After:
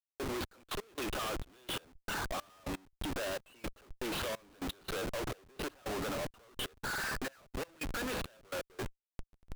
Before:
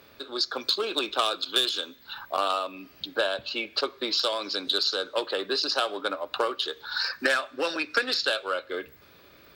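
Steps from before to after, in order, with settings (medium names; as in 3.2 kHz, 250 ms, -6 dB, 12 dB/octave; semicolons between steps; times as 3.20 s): Chebyshev low-pass 2.9 kHz, order 4; compression 2.5:1, threshold -36 dBFS, peak gain reduction 11 dB; Schmitt trigger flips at -46 dBFS; trance gate "xxxxx...x.." 169 bpm -24 dB; trim +2.5 dB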